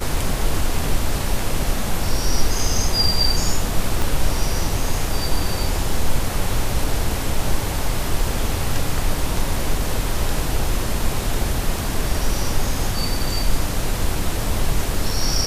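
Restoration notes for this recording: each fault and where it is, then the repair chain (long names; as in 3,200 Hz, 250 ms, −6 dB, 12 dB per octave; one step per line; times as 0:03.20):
0:04.02: click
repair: click removal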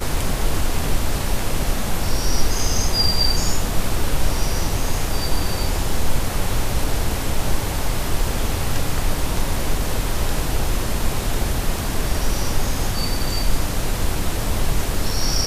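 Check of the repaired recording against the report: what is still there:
0:04.02: click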